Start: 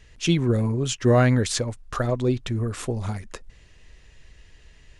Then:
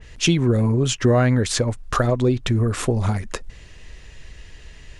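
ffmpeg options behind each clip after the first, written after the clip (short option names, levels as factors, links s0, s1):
-af "acompressor=threshold=0.0562:ratio=3,adynamicequalizer=threshold=0.00447:dfrequency=2500:dqfactor=0.7:tfrequency=2500:tqfactor=0.7:attack=5:release=100:ratio=0.375:range=2:mode=cutabove:tftype=highshelf,volume=2.82"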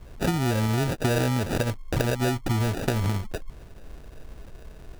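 -af "acrusher=samples=41:mix=1:aa=0.000001,acompressor=threshold=0.112:ratio=6,volume=0.841"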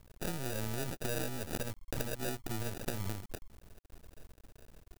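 -af "aeval=exprs='max(val(0),0)':c=same,crystalizer=i=1.5:c=0,volume=0.355"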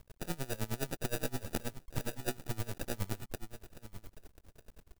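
-af "aecho=1:1:889:0.237,aeval=exprs='val(0)*pow(10,-23*(0.5-0.5*cos(2*PI*9.6*n/s))/20)':c=same,volume=1.78"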